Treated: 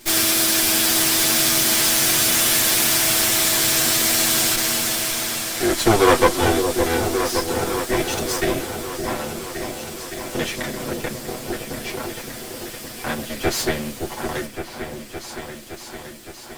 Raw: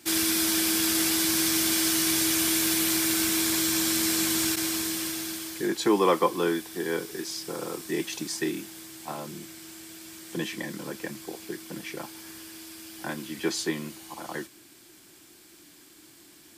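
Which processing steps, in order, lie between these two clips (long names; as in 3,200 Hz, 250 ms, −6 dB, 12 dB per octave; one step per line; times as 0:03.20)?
lower of the sound and its delayed copy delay 8.1 ms
echo whose low-pass opens from repeat to repeat 565 ms, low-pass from 750 Hz, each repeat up 2 octaves, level −6 dB
level +9 dB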